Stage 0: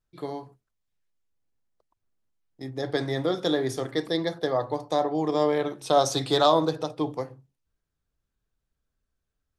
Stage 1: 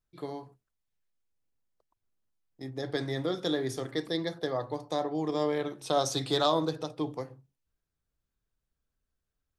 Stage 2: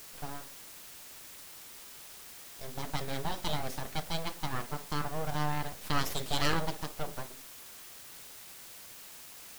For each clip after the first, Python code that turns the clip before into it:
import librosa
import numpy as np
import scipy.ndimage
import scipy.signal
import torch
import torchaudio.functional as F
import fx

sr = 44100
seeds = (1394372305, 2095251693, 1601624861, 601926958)

y1 = fx.dynamic_eq(x, sr, hz=750.0, q=0.9, threshold_db=-34.0, ratio=4.0, max_db=-4)
y1 = y1 * 10.0 ** (-3.5 / 20.0)
y2 = np.abs(y1)
y2 = fx.quant_dither(y2, sr, seeds[0], bits=8, dither='triangular')
y2 = y2 * 10.0 ** (-1.0 / 20.0)